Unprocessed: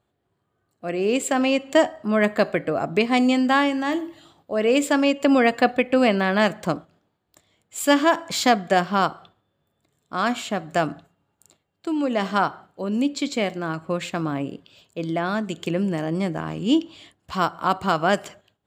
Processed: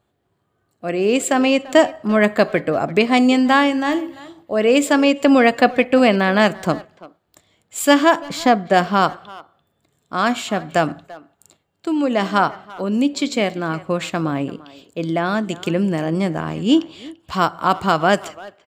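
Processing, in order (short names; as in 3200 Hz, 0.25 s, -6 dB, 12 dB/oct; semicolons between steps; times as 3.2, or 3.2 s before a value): 8.17–8.74 high shelf 2100 Hz -9.5 dB; speakerphone echo 0.34 s, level -18 dB; gain +4.5 dB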